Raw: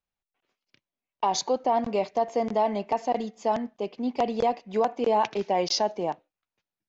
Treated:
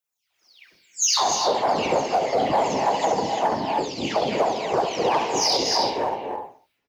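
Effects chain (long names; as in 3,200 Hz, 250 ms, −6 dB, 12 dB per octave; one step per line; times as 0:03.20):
every frequency bin delayed by itself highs early, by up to 420 ms
on a send: repeating echo 66 ms, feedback 32%, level −7 dB
on the sum: random phases in short frames
reverb whose tail is shaped and stops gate 340 ms rising, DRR 6.5 dB
in parallel at −10.5 dB: asymmetric clip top −31.5 dBFS
on the sum: automatic gain control gain up to 15 dB
spectral tilt +3 dB per octave
brickwall limiter −7.5 dBFS, peak gain reduction 8.5 dB
level −4 dB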